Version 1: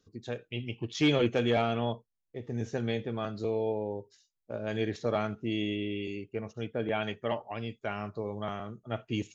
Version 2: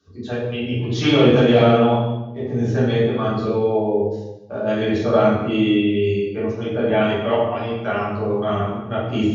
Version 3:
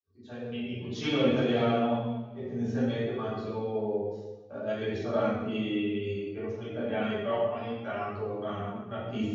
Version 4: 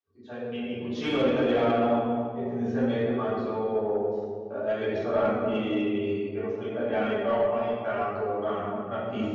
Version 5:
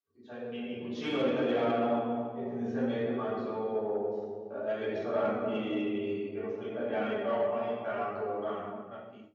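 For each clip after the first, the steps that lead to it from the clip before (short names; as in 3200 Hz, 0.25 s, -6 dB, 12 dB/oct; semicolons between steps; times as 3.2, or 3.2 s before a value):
reverb RT60 1.0 s, pre-delay 3 ms, DRR -9.5 dB; gain -1 dB
opening faded in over 0.54 s; two-slope reverb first 0.54 s, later 2.3 s, from -19 dB, DRR 5 dB; flange 0.61 Hz, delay 2.2 ms, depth 3.3 ms, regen +52%; gain -8.5 dB
overdrive pedal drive 15 dB, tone 1100 Hz, clips at -13.5 dBFS; on a send: darkening echo 0.282 s, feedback 46%, low-pass 810 Hz, level -4.5 dB
ending faded out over 0.92 s; HPF 120 Hz; gain -5 dB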